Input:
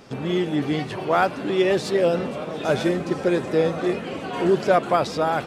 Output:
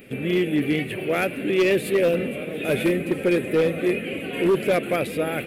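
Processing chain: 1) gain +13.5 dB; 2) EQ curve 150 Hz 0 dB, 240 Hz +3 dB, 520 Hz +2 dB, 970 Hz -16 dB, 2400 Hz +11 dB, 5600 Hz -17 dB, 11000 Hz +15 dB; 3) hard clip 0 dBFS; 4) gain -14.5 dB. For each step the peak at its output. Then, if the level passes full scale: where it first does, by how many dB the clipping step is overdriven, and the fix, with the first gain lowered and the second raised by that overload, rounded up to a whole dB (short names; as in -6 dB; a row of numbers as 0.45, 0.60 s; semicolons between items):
+7.5, +8.0, 0.0, -14.5 dBFS; step 1, 8.0 dB; step 1 +5.5 dB, step 4 -6.5 dB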